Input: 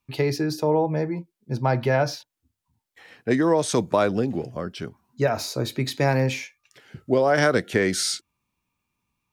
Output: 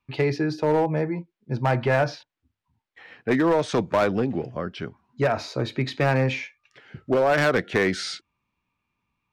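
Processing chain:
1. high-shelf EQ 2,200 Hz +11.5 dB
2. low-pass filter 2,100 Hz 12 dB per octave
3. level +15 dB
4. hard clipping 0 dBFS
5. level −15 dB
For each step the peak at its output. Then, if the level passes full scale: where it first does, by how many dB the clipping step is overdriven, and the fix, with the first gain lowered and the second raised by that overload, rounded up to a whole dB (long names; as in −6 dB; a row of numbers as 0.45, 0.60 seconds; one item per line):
−2.5, −6.0, +9.0, 0.0, −15.0 dBFS
step 3, 9.0 dB
step 3 +6 dB, step 5 −6 dB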